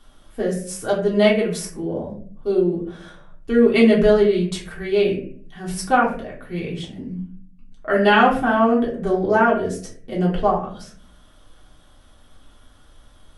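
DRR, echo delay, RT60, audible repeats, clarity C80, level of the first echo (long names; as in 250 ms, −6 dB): −5.5 dB, no echo audible, 0.50 s, no echo audible, 10.5 dB, no echo audible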